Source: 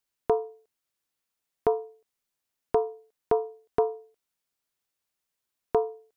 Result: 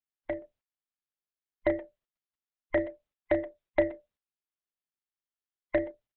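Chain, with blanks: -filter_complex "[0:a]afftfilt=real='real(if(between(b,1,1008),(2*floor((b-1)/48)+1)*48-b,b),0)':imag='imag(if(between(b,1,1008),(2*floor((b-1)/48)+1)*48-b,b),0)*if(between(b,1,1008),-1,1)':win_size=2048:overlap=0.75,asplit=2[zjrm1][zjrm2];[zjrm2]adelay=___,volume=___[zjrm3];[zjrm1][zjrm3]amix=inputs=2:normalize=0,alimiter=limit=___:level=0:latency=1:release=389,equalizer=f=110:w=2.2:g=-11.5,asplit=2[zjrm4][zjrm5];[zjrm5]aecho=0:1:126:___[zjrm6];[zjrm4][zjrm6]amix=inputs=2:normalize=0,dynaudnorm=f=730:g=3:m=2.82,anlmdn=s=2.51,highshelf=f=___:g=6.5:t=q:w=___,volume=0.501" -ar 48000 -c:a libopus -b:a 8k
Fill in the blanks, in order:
33, 0.251, 0.178, 0.126, 1600, 1.5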